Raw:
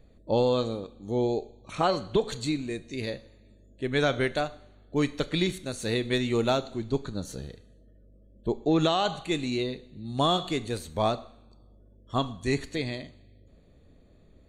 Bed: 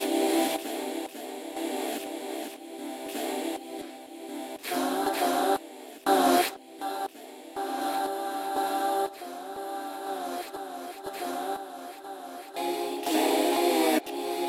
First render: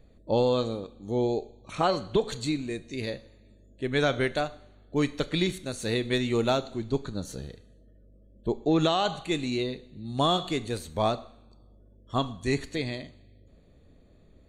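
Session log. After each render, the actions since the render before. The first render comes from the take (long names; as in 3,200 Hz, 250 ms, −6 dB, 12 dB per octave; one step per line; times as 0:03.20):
no processing that can be heard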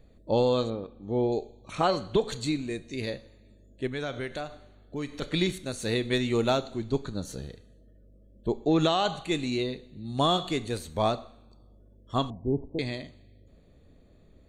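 0:00.70–0:01.32: low-pass filter 2,600 Hz
0:03.87–0:05.22: downward compressor 2 to 1, threshold −36 dBFS
0:12.30–0:12.79: Butterworth low-pass 940 Hz 72 dB per octave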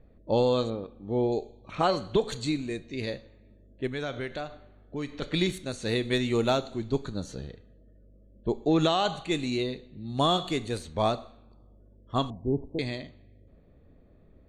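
low-pass that shuts in the quiet parts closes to 1,900 Hz, open at −25.5 dBFS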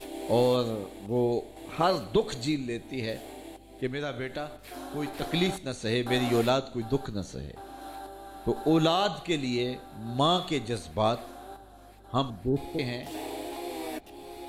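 mix in bed −12.5 dB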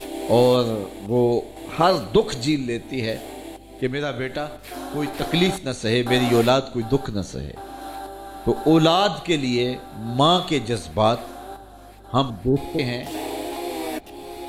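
level +7.5 dB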